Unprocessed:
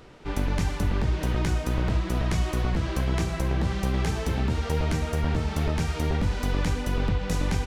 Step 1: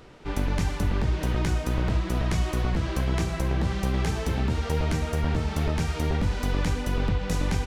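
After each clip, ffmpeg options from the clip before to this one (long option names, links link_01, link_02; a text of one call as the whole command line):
ffmpeg -i in.wav -af anull out.wav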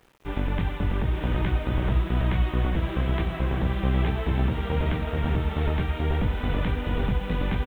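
ffmpeg -i in.wav -af "aresample=8000,aeval=exprs='sgn(val(0))*max(abs(val(0))-0.00422,0)':channel_layout=same,aresample=44100,acrusher=bits=9:mix=0:aa=0.000001,aecho=1:1:882:0.501" out.wav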